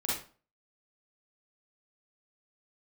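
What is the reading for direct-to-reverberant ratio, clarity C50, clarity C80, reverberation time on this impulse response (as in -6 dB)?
-7.0 dB, -0.5 dB, 7.5 dB, 0.40 s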